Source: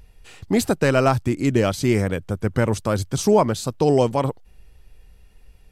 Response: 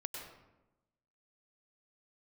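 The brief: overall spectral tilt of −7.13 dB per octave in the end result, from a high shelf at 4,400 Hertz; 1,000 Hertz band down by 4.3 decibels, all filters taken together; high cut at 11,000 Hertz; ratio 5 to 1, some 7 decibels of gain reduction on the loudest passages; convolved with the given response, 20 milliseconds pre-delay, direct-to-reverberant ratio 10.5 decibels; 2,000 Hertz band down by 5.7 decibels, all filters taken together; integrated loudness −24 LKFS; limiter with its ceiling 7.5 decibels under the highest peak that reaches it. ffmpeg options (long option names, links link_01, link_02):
-filter_complex "[0:a]lowpass=11000,equalizer=frequency=1000:width_type=o:gain=-4.5,equalizer=frequency=2000:width_type=o:gain=-4.5,highshelf=frequency=4400:gain=-7,acompressor=threshold=-21dB:ratio=5,alimiter=limit=-18.5dB:level=0:latency=1,asplit=2[link_01][link_02];[1:a]atrim=start_sample=2205,adelay=20[link_03];[link_02][link_03]afir=irnorm=-1:irlink=0,volume=-9.5dB[link_04];[link_01][link_04]amix=inputs=2:normalize=0,volume=5dB"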